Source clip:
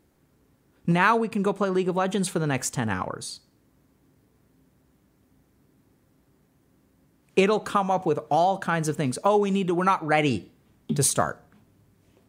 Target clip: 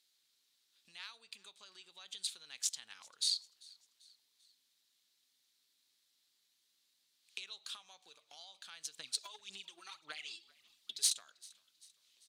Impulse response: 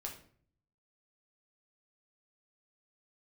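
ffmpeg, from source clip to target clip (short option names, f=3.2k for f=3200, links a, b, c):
-filter_complex "[0:a]acompressor=threshold=-34dB:ratio=10,crystalizer=i=6:c=0,asettb=1/sr,asplit=3[a][b][c];[a]atrim=end=8.994[d];[b]atrim=start=8.99:end=11.13,asetpts=PTS-STARTPTS,afade=t=in:d=0.004:c=qsin,afade=t=out:st=2.136:d=0.004:c=qsin,aphaser=in_gain=1:out_gain=1:delay=3:decay=0.67:speed=1.8:type=sinusoidal[e];[c]atrim=start=11.126[f];[d][e]acrossfade=d=0.004:c1=hsin:c2=qsin[g];[g][f]acrossfade=d=0.004:c1=qsin:c2=hsin,aeval=exprs='0.501*(cos(1*acos(clip(val(0)/0.501,-1,1)))-cos(1*PI/2))+0.0447*(cos(3*acos(clip(val(0)/0.501,-1,1)))-cos(3*PI/2))+0.00316*(cos(6*acos(clip(val(0)/0.501,-1,1)))-cos(6*PI/2))+0.0251*(cos(7*acos(clip(val(0)/0.501,-1,1)))-cos(7*PI/2))':c=same,bandpass=f=3.9k:t=q:w=3.3:csg=0,asplit=4[h][i][j][k];[i]adelay=392,afreqshift=-54,volume=-24dB[l];[j]adelay=784,afreqshift=-108,volume=-30.2dB[m];[k]adelay=1176,afreqshift=-162,volume=-36.4dB[n];[h][l][m][n]amix=inputs=4:normalize=0,volume=5dB"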